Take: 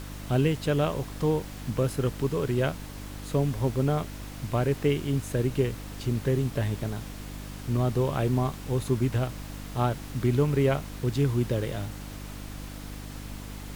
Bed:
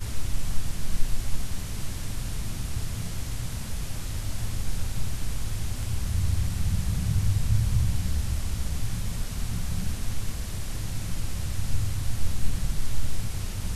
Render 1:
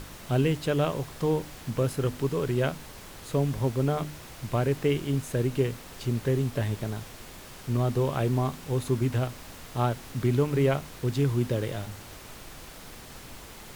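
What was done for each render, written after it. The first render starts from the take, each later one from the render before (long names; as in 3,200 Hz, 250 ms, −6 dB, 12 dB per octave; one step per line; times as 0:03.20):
hum removal 50 Hz, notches 6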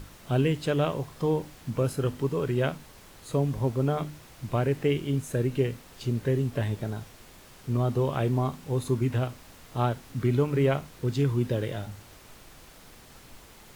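noise reduction from a noise print 6 dB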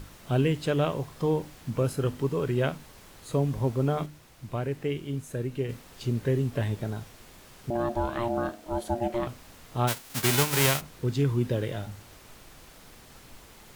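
0:04.06–0:05.69: clip gain −5 dB
0:07.70–0:09.27: ring modulation 470 Hz
0:09.87–0:10.80: spectral envelope flattened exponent 0.3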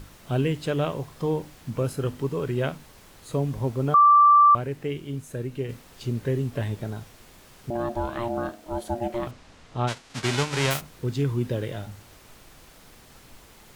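0:03.94–0:04.55: beep over 1,170 Hz −11.5 dBFS
0:09.31–0:10.71: Bessel low-pass filter 5,700 Hz, order 4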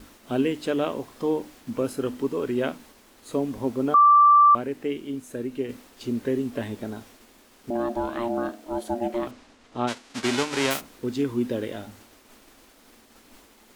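downward expander −46 dBFS
low shelf with overshoot 190 Hz −7 dB, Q 3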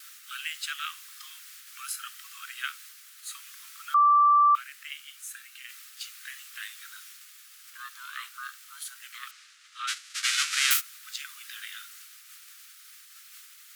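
Butterworth high-pass 1,200 Hz 96 dB per octave
spectral tilt +2.5 dB per octave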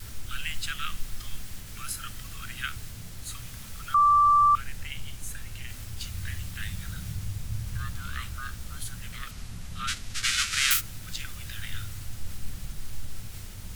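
mix in bed −10 dB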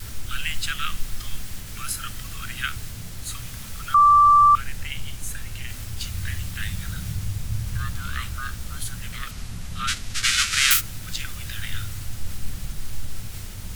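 level +5.5 dB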